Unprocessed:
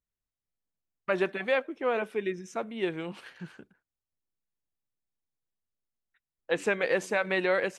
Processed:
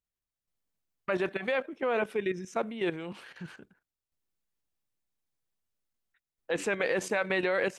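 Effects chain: level held to a coarse grid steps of 11 dB; trim +5.5 dB

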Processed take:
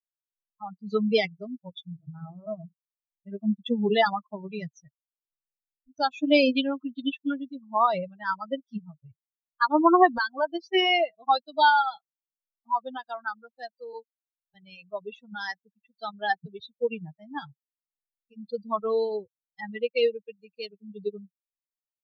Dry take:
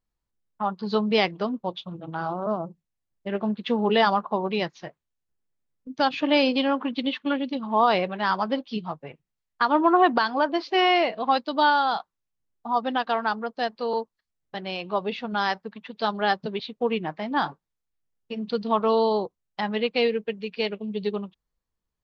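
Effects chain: expander on every frequency bin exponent 3; trim +4.5 dB

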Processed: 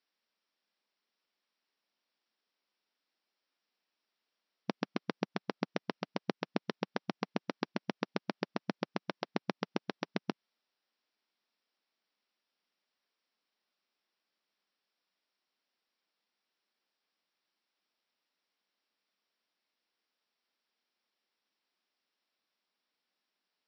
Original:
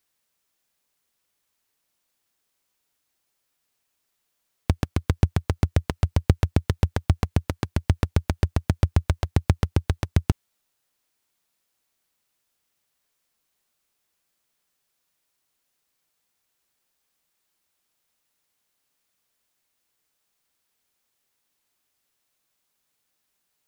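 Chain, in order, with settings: compression, threshold -17 dBFS, peak gain reduction 7 dB; brick-wall FIR band-pass 170–5800 Hz; trim -5.5 dB

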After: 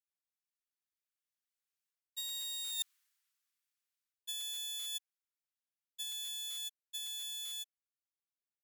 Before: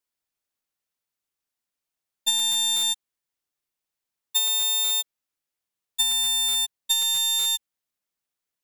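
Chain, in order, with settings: Doppler pass-by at 2.87 s, 15 m/s, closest 2.7 m; high-pass 1.2 kHz 24 dB/octave; reverse; compression 12:1, threshold -47 dBFS, peak gain reduction 25 dB; reverse; trim +10.5 dB

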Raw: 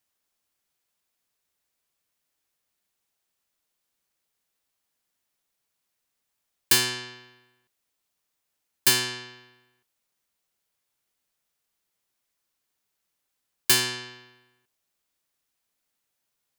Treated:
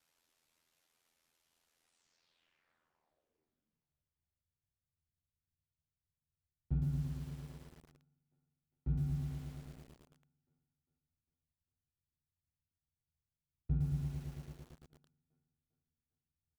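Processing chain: median filter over 3 samples; de-hum 171.4 Hz, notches 9; ring modulator 51 Hz; low-pass sweep 15 kHz -> 130 Hz, 1.79–3.98 s; pitch shift -3.5 st; in parallel at -7 dB: saturation -36.5 dBFS, distortion -12 dB; on the sum: doubling 13 ms -3.5 dB; thinning echo 402 ms, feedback 56%, high-pass 180 Hz, level -16 dB; bit-crushed delay 112 ms, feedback 80%, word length 10-bit, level -3.5 dB; trim +1 dB

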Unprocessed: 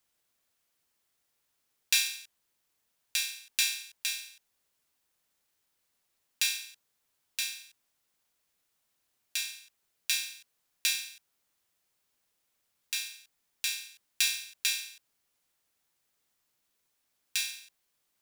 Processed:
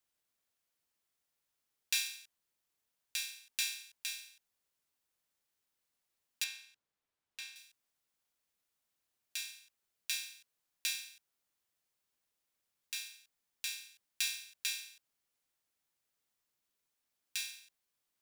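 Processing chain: 6.44–7.56 s: low-pass 2.4 kHz 6 dB/octave; trim -7.5 dB

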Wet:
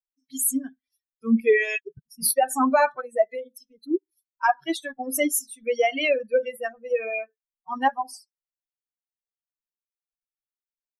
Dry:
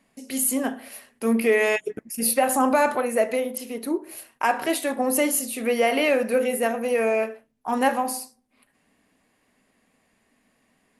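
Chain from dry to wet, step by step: expander on every frequency bin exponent 3; trim +5 dB

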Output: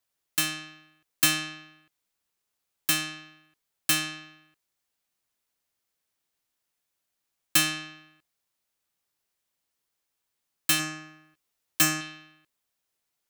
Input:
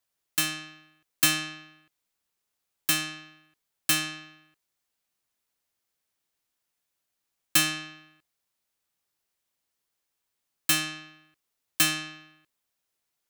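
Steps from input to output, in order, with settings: 10.78–12.01 s: doubling 13 ms -5 dB

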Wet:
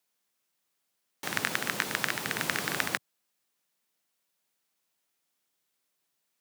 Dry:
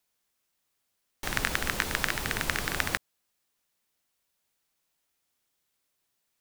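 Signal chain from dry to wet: 2.38–2.86 s: companding laws mixed up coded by mu; high-pass 130 Hz 24 dB/octave; trim -1 dB

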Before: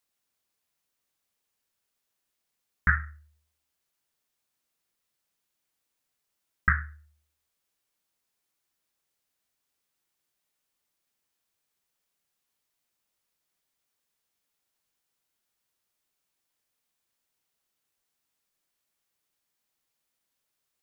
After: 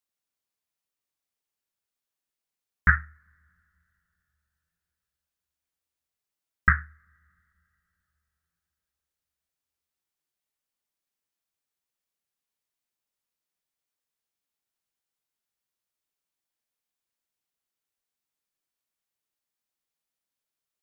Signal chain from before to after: on a send at -24 dB: reverberation RT60 3.5 s, pre-delay 30 ms; on the sum: upward expansion 1.5:1, over -43 dBFS; trim +4.5 dB

